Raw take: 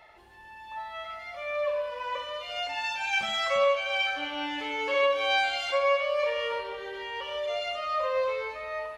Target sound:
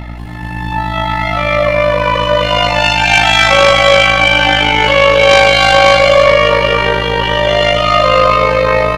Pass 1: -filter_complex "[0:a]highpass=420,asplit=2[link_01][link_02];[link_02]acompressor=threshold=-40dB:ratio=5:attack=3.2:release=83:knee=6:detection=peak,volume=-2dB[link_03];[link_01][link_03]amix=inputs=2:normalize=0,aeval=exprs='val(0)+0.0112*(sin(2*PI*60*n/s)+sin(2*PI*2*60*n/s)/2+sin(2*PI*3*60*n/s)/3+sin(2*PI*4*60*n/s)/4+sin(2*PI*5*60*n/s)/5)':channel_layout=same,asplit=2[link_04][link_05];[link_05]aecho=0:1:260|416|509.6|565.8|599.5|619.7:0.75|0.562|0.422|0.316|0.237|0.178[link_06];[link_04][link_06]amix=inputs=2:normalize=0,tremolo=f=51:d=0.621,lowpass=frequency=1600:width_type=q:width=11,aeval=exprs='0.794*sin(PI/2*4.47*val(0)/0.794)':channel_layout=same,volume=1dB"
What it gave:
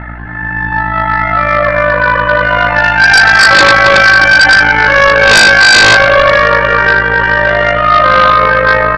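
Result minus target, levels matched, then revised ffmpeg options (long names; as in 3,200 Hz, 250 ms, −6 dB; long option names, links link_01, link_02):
downward compressor: peak gain reduction +6.5 dB; 2,000 Hz band +4.5 dB
-filter_complex "[0:a]highpass=420,asplit=2[link_01][link_02];[link_02]acompressor=threshold=-32dB:ratio=5:attack=3.2:release=83:knee=6:detection=peak,volume=-2dB[link_03];[link_01][link_03]amix=inputs=2:normalize=0,aeval=exprs='val(0)+0.0112*(sin(2*PI*60*n/s)+sin(2*PI*2*60*n/s)/2+sin(2*PI*3*60*n/s)/3+sin(2*PI*4*60*n/s)/4+sin(2*PI*5*60*n/s)/5)':channel_layout=same,asplit=2[link_04][link_05];[link_05]aecho=0:1:260|416|509.6|565.8|599.5|619.7:0.75|0.562|0.422|0.316|0.237|0.178[link_06];[link_04][link_06]amix=inputs=2:normalize=0,tremolo=f=51:d=0.621,aeval=exprs='0.794*sin(PI/2*4.47*val(0)/0.794)':channel_layout=same,volume=1dB"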